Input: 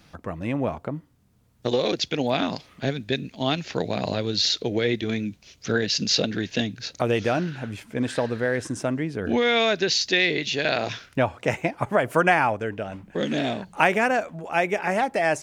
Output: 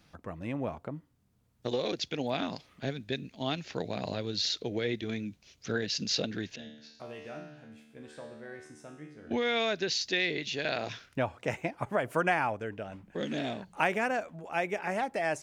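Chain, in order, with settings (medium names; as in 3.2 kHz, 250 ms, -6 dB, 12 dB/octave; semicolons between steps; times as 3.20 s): 6.56–9.31 s: feedback comb 75 Hz, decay 0.8 s, harmonics all, mix 90%; trim -8.5 dB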